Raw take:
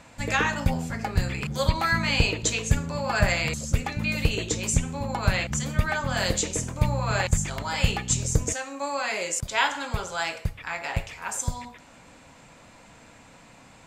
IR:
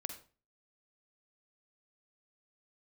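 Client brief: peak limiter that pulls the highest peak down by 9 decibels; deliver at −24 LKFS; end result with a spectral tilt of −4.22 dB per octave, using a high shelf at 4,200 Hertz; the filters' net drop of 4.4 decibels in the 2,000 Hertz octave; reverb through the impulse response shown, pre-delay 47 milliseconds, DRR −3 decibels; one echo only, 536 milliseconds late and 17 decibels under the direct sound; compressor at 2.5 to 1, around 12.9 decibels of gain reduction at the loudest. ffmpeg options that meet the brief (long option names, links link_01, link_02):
-filter_complex "[0:a]equalizer=frequency=2000:width_type=o:gain=-4.5,highshelf=frequency=4200:gain=-5.5,acompressor=threshold=-36dB:ratio=2.5,alimiter=level_in=4dB:limit=-24dB:level=0:latency=1,volume=-4dB,aecho=1:1:536:0.141,asplit=2[link_01][link_02];[1:a]atrim=start_sample=2205,adelay=47[link_03];[link_02][link_03]afir=irnorm=-1:irlink=0,volume=4.5dB[link_04];[link_01][link_04]amix=inputs=2:normalize=0,volume=10.5dB"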